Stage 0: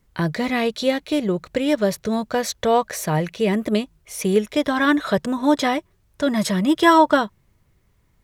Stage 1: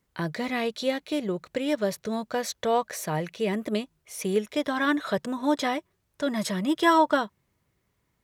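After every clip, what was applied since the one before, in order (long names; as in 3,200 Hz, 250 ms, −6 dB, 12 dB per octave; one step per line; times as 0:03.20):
high-pass filter 170 Hz 6 dB per octave
level −6 dB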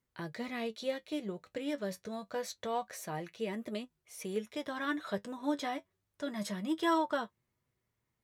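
flanger 0.26 Hz, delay 8 ms, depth 2.8 ms, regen +51%
level −6 dB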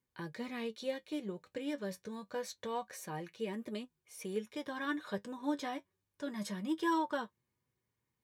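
notch comb filter 670 Hz
level −1.5 dB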